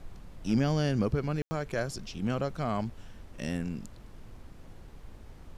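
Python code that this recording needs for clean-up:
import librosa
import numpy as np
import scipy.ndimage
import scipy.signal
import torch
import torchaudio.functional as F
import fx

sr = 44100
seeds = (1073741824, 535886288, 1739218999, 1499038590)

y = fx.fix_ambience(x, sr, seeds[0], print_start_s=4.43, print_end_s=4.93, start_s=1.42, end_s=1.51)
y = fx.noise_reduce(y, sr, print_start_s=4.43, print_end_s=4.93, reduce_db=28.0)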